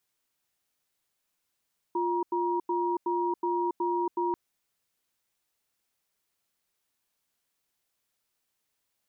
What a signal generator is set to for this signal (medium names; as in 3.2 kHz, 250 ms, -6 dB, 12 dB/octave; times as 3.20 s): cadence 350 Hz, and 950 Hz, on 0.28 s, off 0.09 s, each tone -28 dBFS 2.39 s